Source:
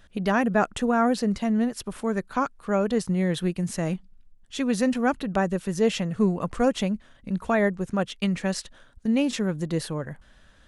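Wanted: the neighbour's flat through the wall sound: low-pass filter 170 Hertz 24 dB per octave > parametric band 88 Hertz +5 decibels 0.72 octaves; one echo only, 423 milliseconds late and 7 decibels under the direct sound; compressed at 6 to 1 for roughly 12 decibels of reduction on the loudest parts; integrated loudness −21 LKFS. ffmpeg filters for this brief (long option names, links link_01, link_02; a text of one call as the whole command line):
ffmpeg -i in.wav -af "acompressor=threshold=-30dB:ratio=6,lowpass=frequency=170:width=0.5412,lowpass=frequency=170:width=1.3066,equalizer=frequency=88:width_type=o:width=0.72:gain=5,aecho=1:1:423:0.447,volume=21.5dB" out.wav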